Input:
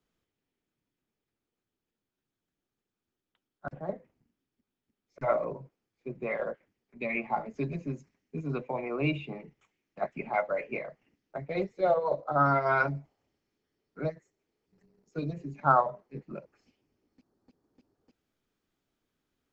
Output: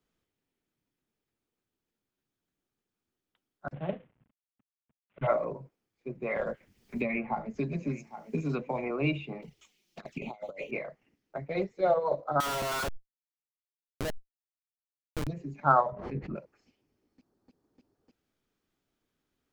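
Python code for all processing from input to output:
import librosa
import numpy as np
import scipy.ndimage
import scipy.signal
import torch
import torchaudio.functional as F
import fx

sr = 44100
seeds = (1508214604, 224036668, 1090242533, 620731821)

y = fx.chain(x, sr, fx.cvsd(bps=16000),
    fx.peak_eq(hz=130.0, db=8.0, octaves=1.3), at=(3.74, 5.27))
y = fx.chain(y, sr, fx.peak_eq(hz=210.0, db=5.0, octaves=0.4),
    fx.echo_single(ms=807, db=-23.5),
    fx.band_squash(depth_pct=100), at=(6.36, 8.91))
y = fx.chain(y, sr, fx.high_shelf_res(hz=2500.0, db=11.0, q=1.5),
    fx.over_compress(threshold_db=-37.0, ratio=-0.5),
    fx.env_flanger(rest_ms=6.6, full_db=-35.5), at=(9.42, 10.71))
y = fx.chain(y, sr, fx.highpass(hz=370.0, slope=12),
    fx.schmitt(flips_db=-34.5),
    fx.env_flatten(amount_pct=100), at=(12.4, 15.27))
y = fx.chain(y, sr, fx.lowpass(hz=3200.0, slope=12),
    fx.peak_eq(hz=65.0, db=13.5, octaves=2.2),
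    fx.pre_swell(db_per_s=61.0), at=(15.92, 16.36))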